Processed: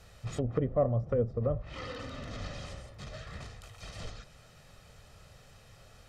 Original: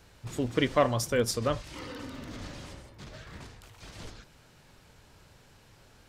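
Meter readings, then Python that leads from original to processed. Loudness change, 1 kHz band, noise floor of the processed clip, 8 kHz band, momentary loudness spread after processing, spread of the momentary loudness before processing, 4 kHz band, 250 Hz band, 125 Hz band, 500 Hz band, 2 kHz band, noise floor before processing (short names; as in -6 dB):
-4.5 dB, -8.0 dB, -57 dBFS, -13.5 dB, 17 LU, 21 LU, -9.0 dB, -4.5 dB, +2.5 dB, -2.0 dB, -9.5 dB, -59 dBFS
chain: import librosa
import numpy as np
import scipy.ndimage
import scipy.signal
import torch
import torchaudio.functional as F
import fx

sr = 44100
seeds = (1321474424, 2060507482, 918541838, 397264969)

y = fx.env_lowpass_down(x, sr, base_hz=450.0, full_db=-25.5)
y = y + 0.57 * np.pad(y, (int(1.6 * sr / 1000.0), 0))[:len(y)]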